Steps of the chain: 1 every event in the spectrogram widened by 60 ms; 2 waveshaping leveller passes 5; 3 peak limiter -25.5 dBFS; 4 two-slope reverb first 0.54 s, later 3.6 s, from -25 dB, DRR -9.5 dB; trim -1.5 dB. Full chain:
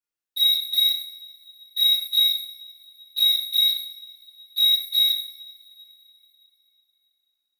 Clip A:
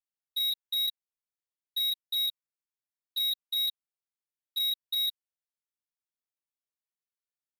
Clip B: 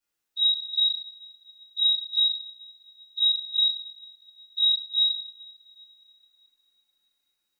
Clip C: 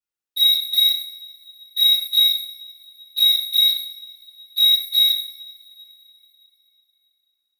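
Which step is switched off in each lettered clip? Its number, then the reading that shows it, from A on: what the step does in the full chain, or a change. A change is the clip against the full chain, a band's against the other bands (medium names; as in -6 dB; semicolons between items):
4, crest factor change -7.0 dB; 2, momentary loudness spread change +1 LU; 3, mean gain reduction 3.0 dB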